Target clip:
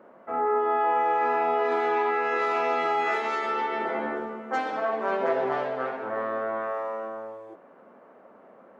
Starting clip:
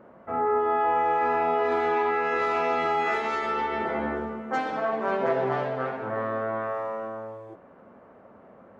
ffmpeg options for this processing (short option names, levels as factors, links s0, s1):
-af "highpass=260"